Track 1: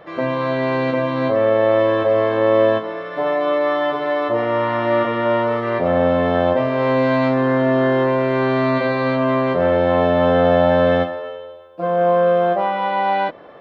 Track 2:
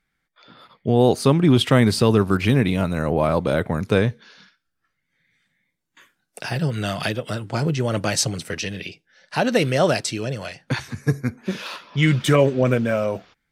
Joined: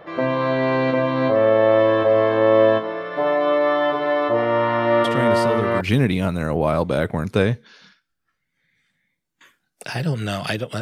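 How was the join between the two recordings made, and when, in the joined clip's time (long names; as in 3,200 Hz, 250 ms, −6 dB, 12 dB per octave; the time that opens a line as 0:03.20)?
track 1
0:05.04: mix in track 2 from 0:01.60 0.77 s −8.5 dB
0:05.81: continue with track 2 from 0:02.37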